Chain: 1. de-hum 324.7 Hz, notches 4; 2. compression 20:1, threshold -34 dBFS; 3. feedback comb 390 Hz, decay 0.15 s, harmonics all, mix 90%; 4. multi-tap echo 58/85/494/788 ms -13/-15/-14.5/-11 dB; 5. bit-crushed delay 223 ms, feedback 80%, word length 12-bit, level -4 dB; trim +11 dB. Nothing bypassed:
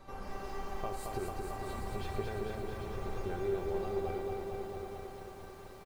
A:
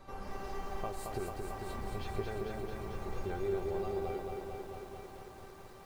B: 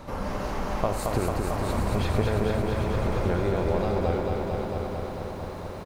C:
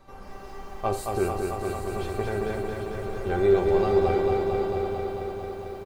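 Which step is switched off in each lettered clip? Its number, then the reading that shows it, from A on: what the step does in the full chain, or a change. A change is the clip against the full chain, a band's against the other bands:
4, momentary loudness spread change +2 LU; 3, 125 Hz band +5.0 dB; 2, mean gain reduction 4.5 dB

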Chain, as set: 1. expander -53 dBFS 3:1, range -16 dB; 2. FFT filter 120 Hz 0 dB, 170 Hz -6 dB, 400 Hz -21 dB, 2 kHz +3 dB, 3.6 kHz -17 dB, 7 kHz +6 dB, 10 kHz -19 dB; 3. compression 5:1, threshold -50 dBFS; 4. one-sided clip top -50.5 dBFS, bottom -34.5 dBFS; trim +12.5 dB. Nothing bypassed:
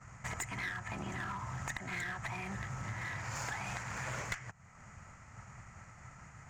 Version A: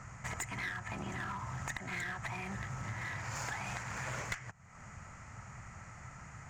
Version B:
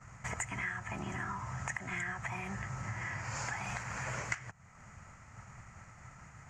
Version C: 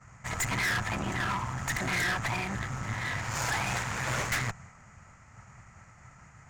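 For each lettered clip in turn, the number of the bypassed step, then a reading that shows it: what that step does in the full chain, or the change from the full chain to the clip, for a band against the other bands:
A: 1, loudness change -1.0 LU; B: 4, distortion -12 dB; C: 3, mean gain reduction 12.0 dB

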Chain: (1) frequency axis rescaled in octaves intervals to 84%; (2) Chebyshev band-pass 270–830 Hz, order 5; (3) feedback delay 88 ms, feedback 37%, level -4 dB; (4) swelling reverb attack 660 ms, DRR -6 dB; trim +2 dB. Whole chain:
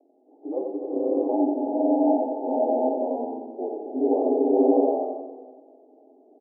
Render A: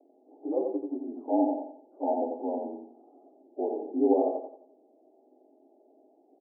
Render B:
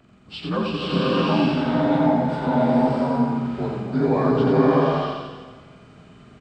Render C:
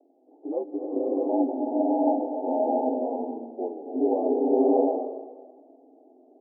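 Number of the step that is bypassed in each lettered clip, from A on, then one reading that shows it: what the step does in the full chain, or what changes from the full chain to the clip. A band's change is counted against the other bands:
4, echo-to-direct 8.0 dB to -3.5 dB; 2, momentary loudness spread change -3 LU; 3, echo-to-direct 8.0 dB to 6.0 dB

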